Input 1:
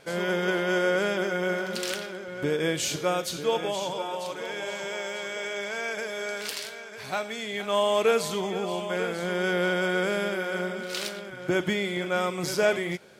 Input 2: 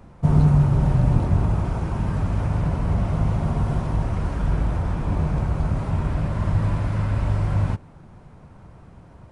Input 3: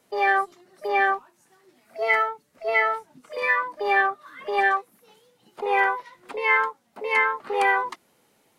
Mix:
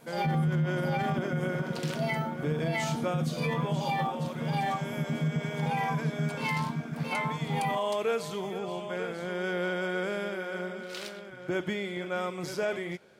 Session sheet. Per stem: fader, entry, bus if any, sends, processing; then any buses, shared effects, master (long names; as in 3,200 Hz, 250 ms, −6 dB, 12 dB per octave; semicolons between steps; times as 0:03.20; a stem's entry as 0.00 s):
−5.0 dB, 0.00 s, no send, high-shelf EQ 3,700 Hz −6.5 dB
−0.5 dB, 0.00 s, no send, channel vocoder with a chord as carrier bare fifth, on D#3; reverb reduction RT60 0.99 s
−5.0 dB, 0.00 s, no send, high-shelf EQ 3,600 Hz +11 dB; phaser with its sweep stopped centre 410 Hz, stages 6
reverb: not used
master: brickwall limiter −21 dBFS, peak gain reduction 13.5 dB